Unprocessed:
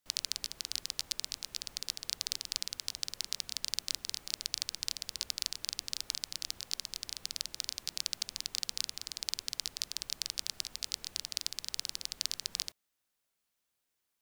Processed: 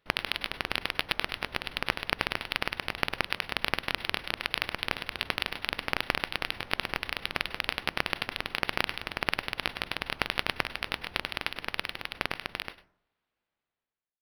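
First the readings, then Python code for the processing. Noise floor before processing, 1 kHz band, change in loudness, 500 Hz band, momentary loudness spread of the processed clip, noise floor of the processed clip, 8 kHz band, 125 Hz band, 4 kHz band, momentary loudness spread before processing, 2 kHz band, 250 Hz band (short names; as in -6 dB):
-83 dBFS, +22.5 dB, +5.0 dB, +21.5 dB, 4 LU, under -85 dBFS, -12.0 dB, +16.5 dB, +2.5 dB, 3 LU, +19.0 dB, +19.0 dB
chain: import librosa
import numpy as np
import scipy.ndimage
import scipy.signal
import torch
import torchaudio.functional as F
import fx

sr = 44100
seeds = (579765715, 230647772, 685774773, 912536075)

p1 = fx.fade_out_tail(x, sr, length_s=3.71)
p2 = fx.rev_plate(p1, sr, seeds[0], rt60_s=0.63, hf_ratio=0.25, predelay_ms=90, drr_db=8.0)
p3 = fx.rider(p2, sr, range_db=3, speed_s=0.5)
p4 = p2 + F.gain(torch.from_numpy(p3), -2.5).numpy()
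p5 = np.interp(np.arange(len(p4)), np.arange(len(p4))[::6], p4[::6])
y = F.gain(torch.from_numpy(p5), 4.0).numpy()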